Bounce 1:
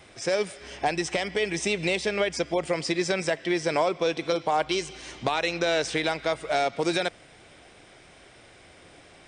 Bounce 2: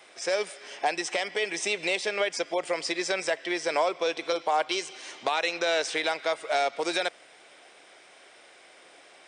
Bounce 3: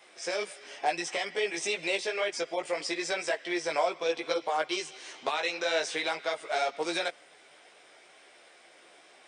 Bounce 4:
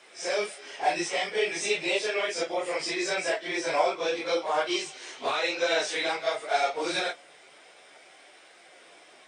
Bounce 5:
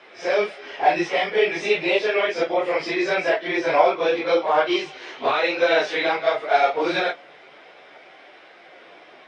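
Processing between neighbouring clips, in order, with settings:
high-pass filter 460 Hz 12 dB per octave
multi-voice chorus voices 4, 0.87 Hz, delay 16 ms, depth 4.3 ms
random phases in long frames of 100 ms; level +3 dB
high-frequency loss of the air 260 metres; level +9 dB

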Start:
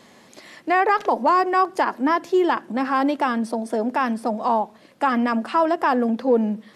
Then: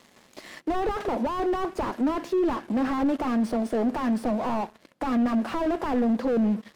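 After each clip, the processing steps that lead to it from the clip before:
leveller curve on the samples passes 3
slew-rate limiting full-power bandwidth 98 Hz
level −8.5 dB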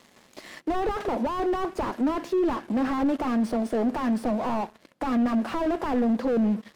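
no processing that can be heard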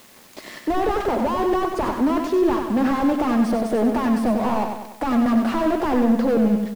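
on a send: repeating echo 95 ms, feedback 51%, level −6 dB
on the sum: background noise white −56 dBFS
level +4.5 dB

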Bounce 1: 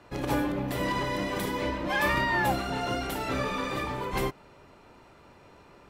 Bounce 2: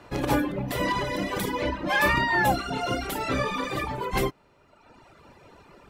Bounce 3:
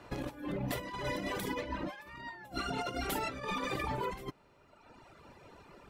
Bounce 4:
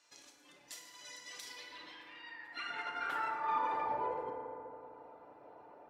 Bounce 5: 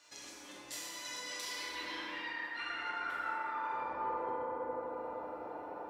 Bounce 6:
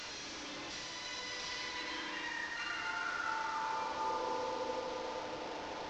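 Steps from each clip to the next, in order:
reverb reduction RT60 1.3 s; level +5 dB
compressor whose output falls as the input rises −30 dBFS, ratio −0.5; level −7.5 dB
feedback delay network reverb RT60 3.2 s, low-frequency decay 1.2×, high-frequency decay 0.35×, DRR 0 dB; band-pass filter sweep 6,400 Hz → 670 Hz, 0:01.21–0:04.11; level +2.5 dB
reversed playback; downward compressor 8 to 1, threshold −47 dBFS, peak gain reduction 17 dB; reversed playback; dense smooth reverb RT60 3.1 s, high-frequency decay 0.45×, DRR −4 dB; level +5.5 dB
linear delta modulator 32 kbit/s, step −38 dBFS

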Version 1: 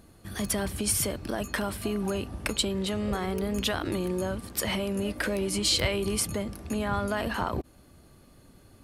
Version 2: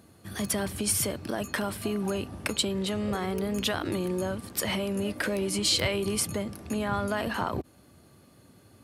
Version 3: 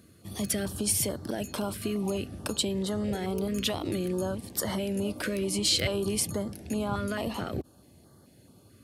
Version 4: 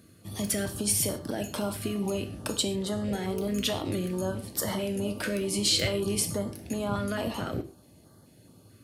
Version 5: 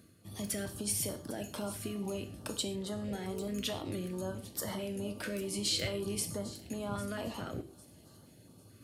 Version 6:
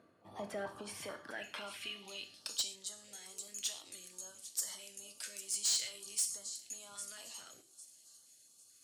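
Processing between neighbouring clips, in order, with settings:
high-pass filter 79 Hz 24 dB per octave
notch on a step sequencer 4.6 Hz 840–2,500 Hz
reverb whose tail is shaped and stops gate 160 ms falling, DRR 6.5 dB
reversed playback; upward compression, threshold −42 dBFS; reversed playback; delay with a high-pass on its return 801 ms, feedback 32%, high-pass 5,000 Hz, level −14 dB; level −7.5 dB
band-pass filter sweep 840 Hz → 7,100 Hz, 0:00.53–0:02.88; soft clipping −36.5 dBFS, distortion −12 dB; level +10 dB

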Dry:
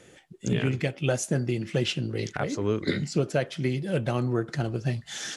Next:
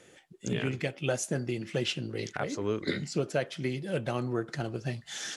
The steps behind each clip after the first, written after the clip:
low-shelf EQ 190 Hz −7 dB
level −2.5 dB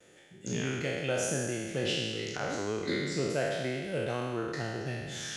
peak hold with a decay on every bin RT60 1.71 s
noise gate with hold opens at −47 dBFS
level −5 dB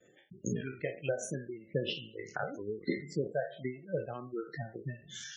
reverb reduction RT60 1.3 s
transient designer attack +9 dB, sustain −7 dB
gate on every frequency bin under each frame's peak −15 dB strong
level −4 dB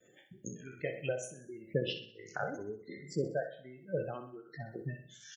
high-shelf EQ 6,300 Hz +7.5 dB
shaped tremolo triangle 1.3 Hz, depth 90%
on a send: repeating echo 63 ms, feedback 47%, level −11 dB
on the sum: level +1.5 dB

